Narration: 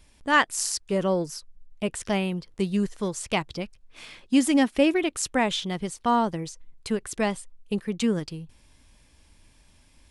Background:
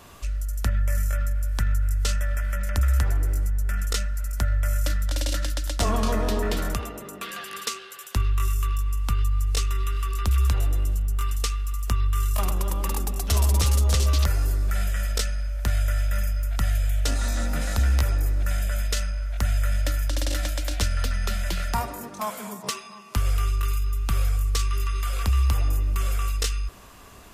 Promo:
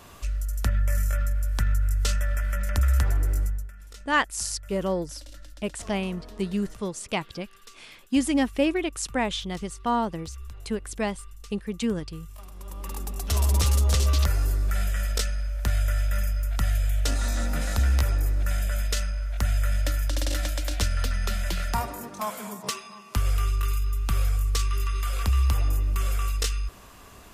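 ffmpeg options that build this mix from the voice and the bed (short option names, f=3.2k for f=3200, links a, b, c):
-filter_complex "[0:a]adelay=3800,volume=-2.5dB[a];[1:a]volume=18.5dB,afade=t=out:st=3.43:d=0.28:silence=0.105925,afade=t=in:st=12.53:d=1.04:silence=0.112202[b];[a][b]amix=inputs=2:normalize=0"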